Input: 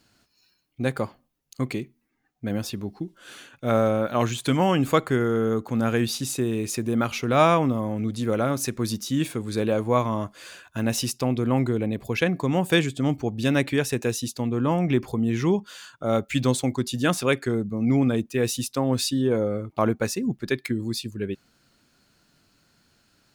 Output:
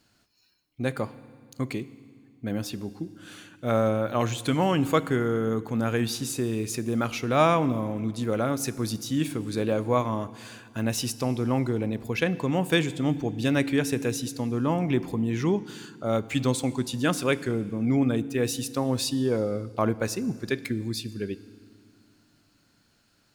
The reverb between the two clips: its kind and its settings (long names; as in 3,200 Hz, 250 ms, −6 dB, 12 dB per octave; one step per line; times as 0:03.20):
feedback delay network reverb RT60 1.9 s, low-frequency decay 1.5×, high-frequency decay 0.95×, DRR 15.5 dB
level −2.5 dB